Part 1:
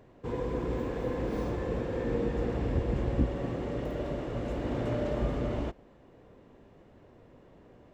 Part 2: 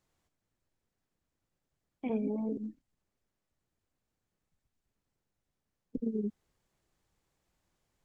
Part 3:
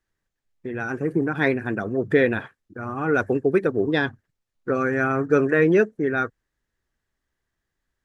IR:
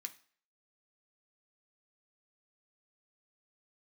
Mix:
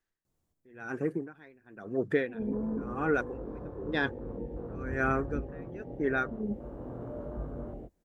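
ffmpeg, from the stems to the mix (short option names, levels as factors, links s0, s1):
-filter_complex "[0:a]afwtdn=0.0158,highshelf=f=4100:g=-11.5,flanger=delay=20:depth=3.6:speed=0.95,adelay=2150,volume=0.531[s0];[1:a]equalizer=f=2300:w=0.31:g=-12.5,adelay=250,volume=1.33[s1];[2:a]equalizer=f=63:w=0.73:g=-8,aeval=exprs='val(0)*pow(10,-30*(0.5-0.5*cos(2*PI*0.98*n/s))/20)':c=same,volume=0.596,asplit=2[s2][s3];[s3]apad=whole_len=365832[s4];[s1][s4]sidechaincompress=threshold=0.00631:ratio=8:attack=16:release=179[s5];[s0][s5][s2]amix=inputs=3:normalize=0"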